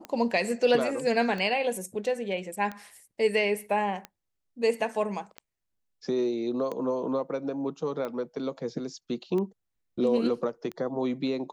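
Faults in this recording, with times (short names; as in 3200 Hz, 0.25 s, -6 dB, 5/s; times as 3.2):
tick 45 rpm -22 dBFS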